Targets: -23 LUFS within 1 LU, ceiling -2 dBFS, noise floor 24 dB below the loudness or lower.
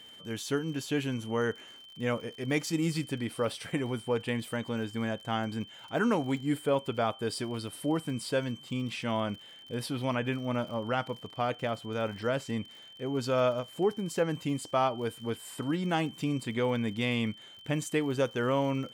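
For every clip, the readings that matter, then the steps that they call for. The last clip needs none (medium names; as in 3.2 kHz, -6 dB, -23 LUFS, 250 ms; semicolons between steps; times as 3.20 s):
tick rate 59 per s; steady tone 3.1 kHz; tone level -49 dBFS; loudness -32.0 LUFS; peak level -15.5 dBFS; loudness target -23.0 LUFS
-> de-click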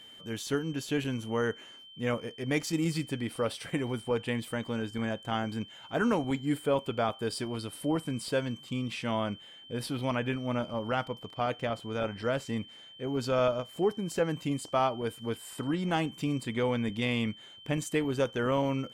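tick rate 0.053 per s; steady tone 3.1 kHz; tone level -49 dBFS
-> band-stop 3.1 kHz, Q 30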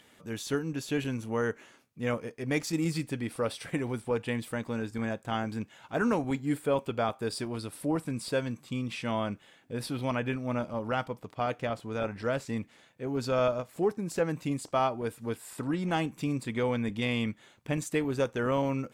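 steady tone not found; loudness -32.0 LUFS; peak level -15.5 dBFS; loudness target -23.0 LUFS
-> trim +9 dB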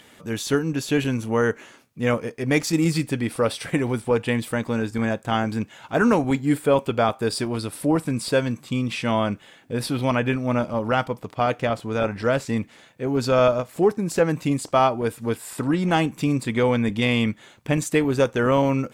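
loudness -23.0 LUFS; peak level -6.5 dBFS; noise floor -52 dBFS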